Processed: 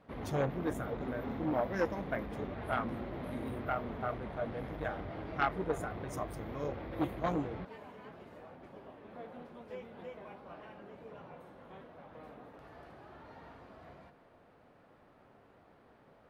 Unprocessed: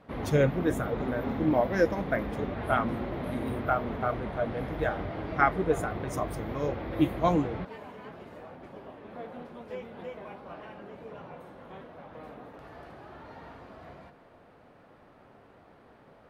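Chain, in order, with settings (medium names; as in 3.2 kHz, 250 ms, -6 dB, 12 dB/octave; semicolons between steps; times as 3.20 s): transformer saturation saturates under 970 Hz; trim -6 dB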